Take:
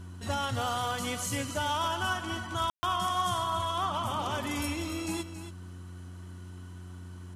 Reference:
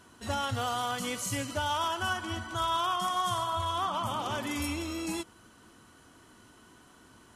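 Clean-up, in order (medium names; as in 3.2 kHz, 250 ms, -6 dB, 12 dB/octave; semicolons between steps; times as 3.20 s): de-hum 90.1 Hz, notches 4; room tone fill 2.70–2.83 s; inverse comb 277 ms -11 dB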